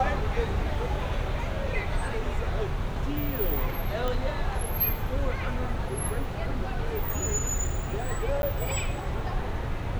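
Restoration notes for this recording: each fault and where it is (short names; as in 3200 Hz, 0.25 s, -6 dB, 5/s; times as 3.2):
4.08 pop -17 dBFS
8.42–8.43 gap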